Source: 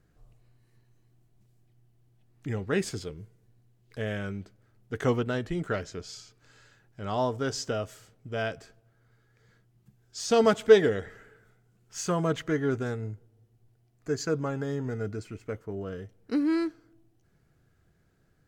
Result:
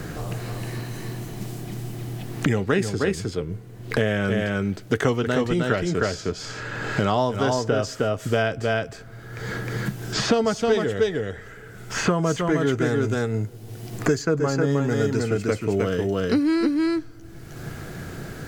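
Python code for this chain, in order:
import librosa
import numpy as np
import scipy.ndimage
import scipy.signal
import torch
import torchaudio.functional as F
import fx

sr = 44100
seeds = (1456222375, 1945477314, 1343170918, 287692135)

y = fx.rider(x, sr, range_db=3, speed_s=0.5)
y = y + 10.0 ** (-3.5 / 20.0) * np.pad(y, (int(311 * sr / 1000.0), 0))[:len(y)]
y = fx.band_squash(y, sr, depth_pct=100)
y = y * 10.0 ** (5.5 / 20.0)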